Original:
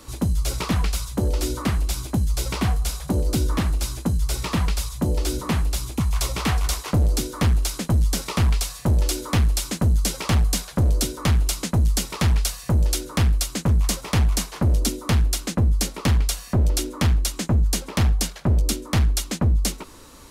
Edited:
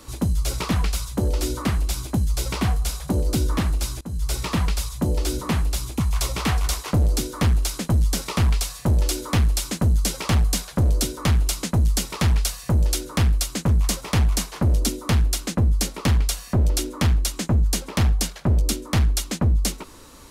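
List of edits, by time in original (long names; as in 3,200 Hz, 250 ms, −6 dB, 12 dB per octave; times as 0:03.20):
0:04.01–0:04.30: fade in, from −21.5 dB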